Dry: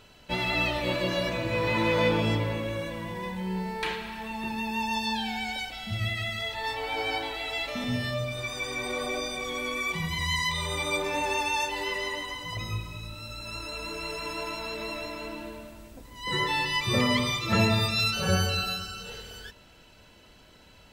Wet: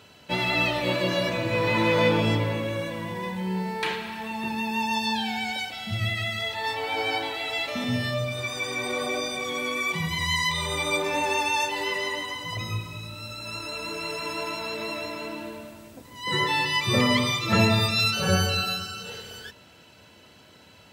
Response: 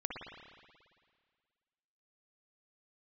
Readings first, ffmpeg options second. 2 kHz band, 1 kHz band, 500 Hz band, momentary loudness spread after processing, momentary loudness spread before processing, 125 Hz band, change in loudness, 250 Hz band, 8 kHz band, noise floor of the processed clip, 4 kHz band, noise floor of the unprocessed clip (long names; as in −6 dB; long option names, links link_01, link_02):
+3.0 dB, +3.0 dB, +3.0 dB, 13 LU, 13 LU, +2.5 dB, +3.0 dB, +3.0 dB, +3.0 dB, −52 dBFS, +3.0 dB, −55 dBFS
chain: -af "highpass=frequency=83:width=0.5412,highpass=frequency=83:width=1.3066,volume=3dB"